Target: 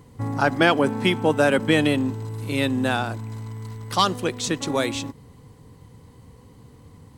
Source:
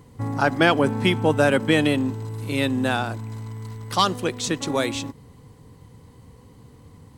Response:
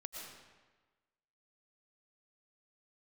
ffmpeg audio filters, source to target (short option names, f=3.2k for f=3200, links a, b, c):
-filter_complex "[0:a]asettb=1/sr,asplit=3[a][b][c];[a]atrim=end=0.624[d];[b]atrim=start=0.62:end=1.59,asetpts=PTS-STARTPTS,afade=t=in:d=0.004:c=qsin,afade=t=out:st=0.966:d=0.004:c=qsin,highpass=140[e];[c]atrim=start=1.586[f];[d][e]acrossfade=d=0.004:c1=hsin:c2=qsin[g];[g][f]acrossfade=d=0.004:c1=qsin:c2=hsin"